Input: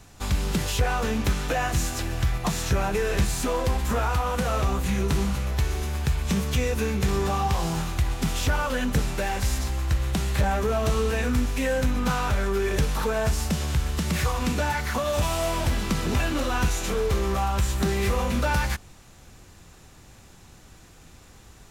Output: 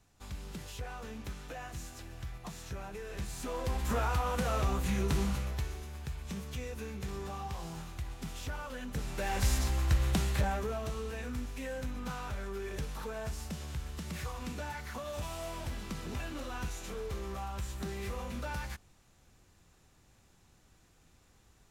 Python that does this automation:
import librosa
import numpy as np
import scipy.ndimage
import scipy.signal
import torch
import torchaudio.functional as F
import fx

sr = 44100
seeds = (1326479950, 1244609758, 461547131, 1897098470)

y = fx.gain(x, sr, db=fx.line((3.07, -18.0), (3.92, -6.5), (5.35, -6.5), (5.85, -15.5), (8.88, -15.5), (9.43, -3.5), (10.14, -3.5), (10.93, -14.5)))